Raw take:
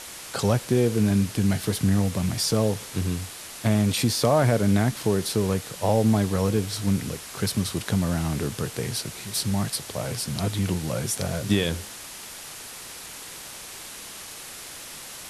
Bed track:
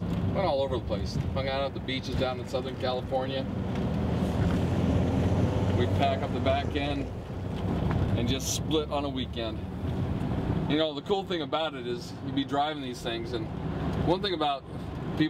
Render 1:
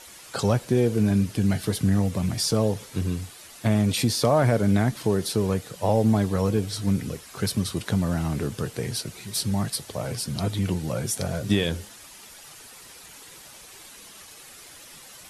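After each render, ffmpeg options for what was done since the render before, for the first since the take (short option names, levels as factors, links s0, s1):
-af "afftdn=nr=9:nf=-40"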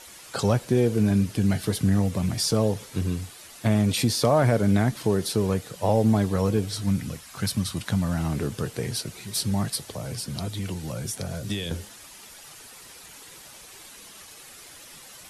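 -filter_complex "[0:a]asettb=1/sr,asplit=3[s0][s1][s2];[s0]atrim=end=6.834[s3];[s1]atrim=start=6.83:end=8.19,asetpts=PTS-STARTPTS,afade=t=in:d=0.004:c=qsin,afade=t=out:st=1.356:d=0.004:c=qsin,equalizer=f=410:t=o:w=0.66:g=-10[s4];[s2]atrim=start=8.186[s5];[s3][s4]acrossfade=d=0.004:c1=hsin:c2=qsin[s6];[s6][s5]acrossfade=d=0.004:c1=qsin:c2=hsin,asettb=1/sr,asplit=3[s7][s8][s9];[s7]atrim=end=9.944[s10];[s8]atrim=start=9.94:end=11.71,asetpts=PTS-STARTPTS,afade=t=in:d=0.004:c=qsin,afade=t=out:st=1.766:d=0.004:c=qsin,acrossover=split=120|350|720|3300[s11][s12][s13][s14][s15];[s11]acompressor=threshold=0.0178:ratio=3[s16];[s12]acompressor=threshold=0.0158:ratio=3[s17];[s13]acompressor=threshold=0.00631:ratio=3[s18];[s14]acompressor=threshold=0.00631:ratio=3[s19];[s15]acompressor=threshold=0.0251:ratio=3[s20];[s16][s17][s18][s19][s20]amix=inputs=5:normalize=0[s21];[s9]atrim=start=11.706[s22];[s10][s21]acrossfade=d=0.004:c1=hsin:c2=qsin[s23];[s23][s22]acrossfade=d=0.004:c1=qsin:c2=hsin"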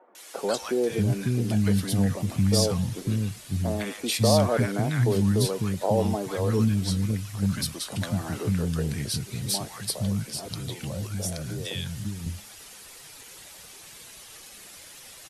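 -filter_complex "[0:a]acrossover=split=270|1100[s0][s1][s2];[s2]adelay=150[s3];[s0]adelay=550[s4];[s4][s1][s3]amix=inputs=3:normalize=0"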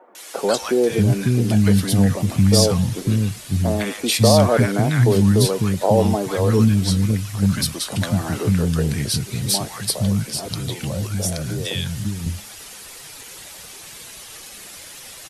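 -af "volume=2.37,alimiter=limit=0.794:level=0:latency=1"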